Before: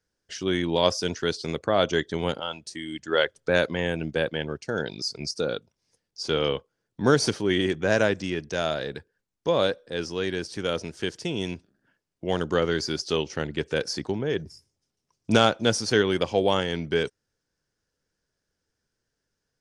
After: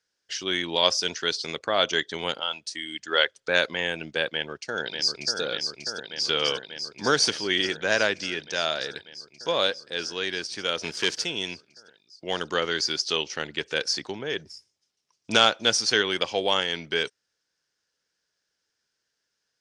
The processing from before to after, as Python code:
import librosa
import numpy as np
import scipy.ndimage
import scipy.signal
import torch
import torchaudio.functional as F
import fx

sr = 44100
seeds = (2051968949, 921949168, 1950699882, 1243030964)

y = fx.echo_throw(x, sr, start_s=4.27, length_s=1.13, ms=590, feedback_pct=80, wet_db=-5.5)
y = fx.leveller(y, sr, passes=2, at=(10.82, 11.25))
y = scipy.signal.sosfilt(scipy.signal.butter(2, 4800.0, 'lowpass', fs=sr, output='sos'), y)
y = fx.tilt_eq(y, sr, slope=4.0)